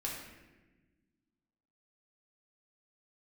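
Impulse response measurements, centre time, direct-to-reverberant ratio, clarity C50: 58 ms, -4.0 dB, 2.0 dB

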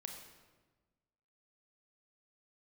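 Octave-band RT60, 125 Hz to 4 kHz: 1.6, 1.6, 1.4, 1.2, 1.1, 0.90 s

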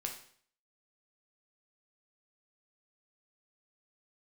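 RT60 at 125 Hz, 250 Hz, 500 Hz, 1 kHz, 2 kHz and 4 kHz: 0.60, 0.55, 0.55, 0.55, 0.55, 0.55 s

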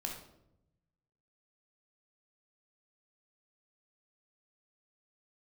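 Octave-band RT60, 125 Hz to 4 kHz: 1.6, 1.2, 0.95, 0.70, 0.55, 0.50 s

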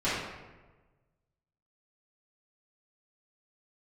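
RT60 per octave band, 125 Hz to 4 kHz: 1.8, 1.3, 1.3, 1.2, 1.0, 0.75 s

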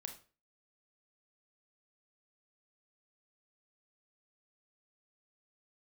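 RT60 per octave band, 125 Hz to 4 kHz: 0.40, 0.40, 0.40, 0.35, 0.35, 0.30 s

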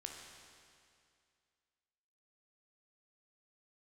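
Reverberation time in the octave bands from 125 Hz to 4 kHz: 2.3, 2.3, 2.3, 2.3, 2.3, 2.2 s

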